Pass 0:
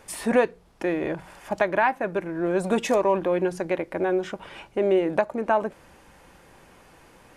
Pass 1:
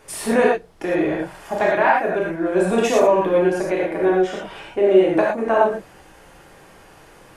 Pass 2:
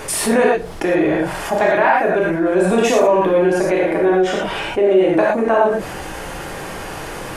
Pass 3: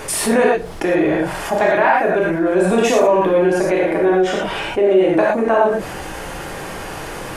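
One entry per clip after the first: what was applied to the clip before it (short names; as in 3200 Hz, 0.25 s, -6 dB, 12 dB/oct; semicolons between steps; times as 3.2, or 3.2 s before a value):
non-linear reverb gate 0.14 s flat, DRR -4.5 dB
fast leveller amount 50%; gain -1 dB
crackle 39/s -41 dBFS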